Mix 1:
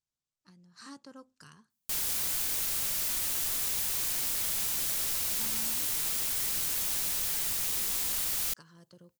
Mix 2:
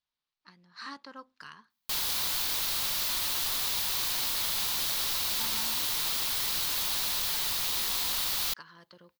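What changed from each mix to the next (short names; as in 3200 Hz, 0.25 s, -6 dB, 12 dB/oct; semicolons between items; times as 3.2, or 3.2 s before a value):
speech: add graphic EQ 125/2000/8000 Hz -8/+9/-9 dB; master: add graphic EQ 1000/4000/8000 Hz +8/+10/-5 dB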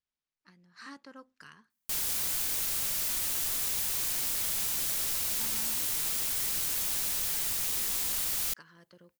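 master: add graphic EQ 1000/4000/8000 Hz -8/-10/+5 dB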